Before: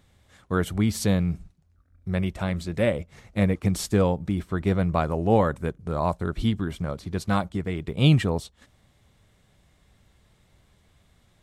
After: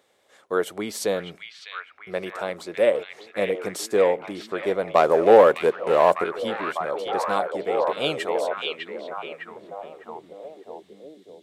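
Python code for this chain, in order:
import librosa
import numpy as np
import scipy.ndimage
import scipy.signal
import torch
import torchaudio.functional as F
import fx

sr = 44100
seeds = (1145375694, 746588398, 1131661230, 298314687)

y = fx.leveller(x, sr, passes=2, at=(4.95, 6.24))
y = fx.filter_sweep_highpass(y, sr, from_hz=460.0, to_hz=3700.0, start_s=7.78, end_s=10.6, q=2.0)
y = fx.echo_stepped(y, sr, ms=603, hz=2700.0, octaves=-0.7, feedback_pct=70, wet_db=-1.0)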